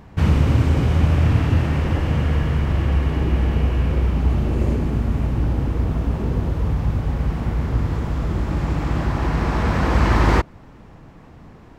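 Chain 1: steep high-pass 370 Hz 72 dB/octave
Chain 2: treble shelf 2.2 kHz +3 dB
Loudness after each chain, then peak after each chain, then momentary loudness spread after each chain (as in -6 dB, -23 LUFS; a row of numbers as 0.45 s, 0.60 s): -30.5 LUFS, -20.5 LUFS; -9.5 dBFS, -4.0 dBFS; 12 LU, 6 LU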